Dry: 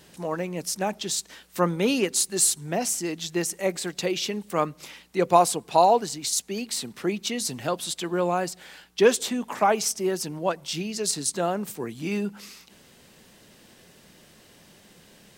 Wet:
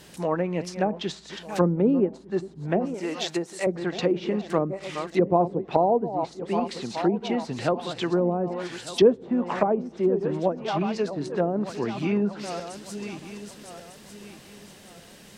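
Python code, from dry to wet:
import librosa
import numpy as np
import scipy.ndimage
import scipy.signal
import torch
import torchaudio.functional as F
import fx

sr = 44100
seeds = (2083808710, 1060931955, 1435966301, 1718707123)

y = fx.reverse_delay_fb(x, sr, ms=600, feedback_pct=56, wet_db=-12)
y = fx.env_lowpass_down(y, sr, base_hz=460.0, full_db=-20.5)
y = fx.riaa(y, sr, side='recording', at=(2.94, 3.67))
y = y * 10.0 ** (4.0 / 20.0)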